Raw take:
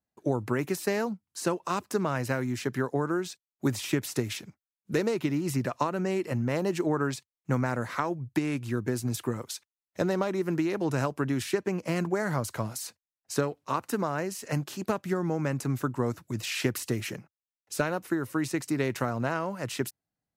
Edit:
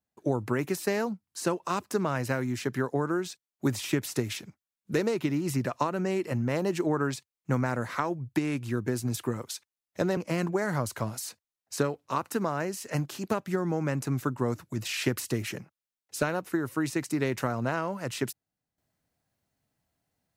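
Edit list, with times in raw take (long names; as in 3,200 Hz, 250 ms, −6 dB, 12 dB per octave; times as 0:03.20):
0:10.17–0:11.75: remove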